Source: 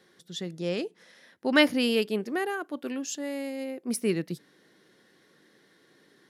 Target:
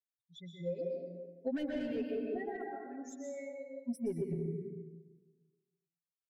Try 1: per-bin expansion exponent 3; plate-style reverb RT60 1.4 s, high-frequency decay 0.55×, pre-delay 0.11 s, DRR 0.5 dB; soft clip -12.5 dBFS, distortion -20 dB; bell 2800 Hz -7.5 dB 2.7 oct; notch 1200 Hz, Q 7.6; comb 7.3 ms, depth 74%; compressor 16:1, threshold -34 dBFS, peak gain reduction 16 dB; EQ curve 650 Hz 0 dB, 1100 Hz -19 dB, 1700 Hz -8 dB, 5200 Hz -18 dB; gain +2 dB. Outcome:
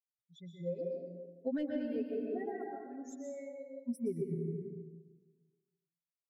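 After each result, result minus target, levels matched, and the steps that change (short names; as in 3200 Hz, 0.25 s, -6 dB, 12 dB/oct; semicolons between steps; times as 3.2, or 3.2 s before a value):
soft clip: distortion -12 dB; 2000 Hz band -4.5 dB
change: soft clip -24 dBFS, distortion -8 dB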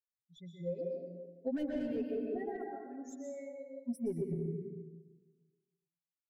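2000 Hz band -5.0 dB
remove: bell 2800 Hz -7.5 dB 2.7 oct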